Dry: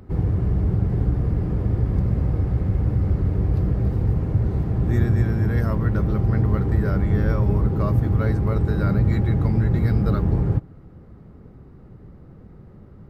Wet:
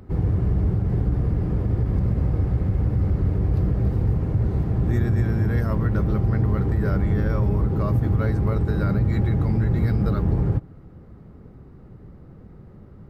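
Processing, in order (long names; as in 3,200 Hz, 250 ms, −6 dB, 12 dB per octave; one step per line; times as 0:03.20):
brickwall limiter −12.5 dBFS, peak gain reduction 4 dB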